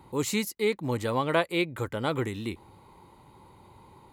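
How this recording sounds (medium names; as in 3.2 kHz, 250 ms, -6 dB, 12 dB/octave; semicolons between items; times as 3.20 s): noise floor -56 dBFS; spectral tilt -5.0 dB/octave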